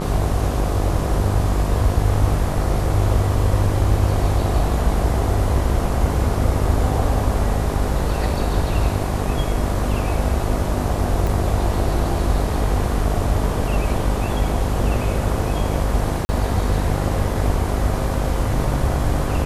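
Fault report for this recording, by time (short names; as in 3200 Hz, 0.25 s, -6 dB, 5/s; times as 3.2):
buzz 50 Hz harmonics 25 -24 dBFS
11.27 pop
16.25–16.29 gap 40 ms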